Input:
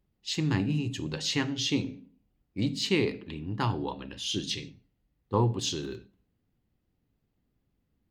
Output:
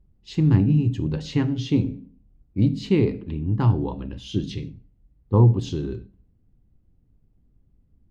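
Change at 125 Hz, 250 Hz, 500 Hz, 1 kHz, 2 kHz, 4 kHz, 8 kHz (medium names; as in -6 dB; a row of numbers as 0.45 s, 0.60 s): +12.0 dB, +8.0 dB, +5.0 dB, +0.5 dB, -4.5 dB, -7.5 dB, under -10 dB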